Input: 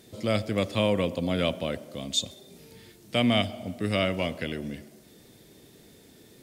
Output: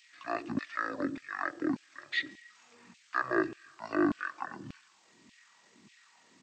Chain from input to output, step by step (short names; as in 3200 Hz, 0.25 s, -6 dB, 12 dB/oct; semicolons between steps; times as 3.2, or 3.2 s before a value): pitch shift -11 st; LFO high-pass saw down 1.7 Hz 210–2800 Hz; gain -4.5 dB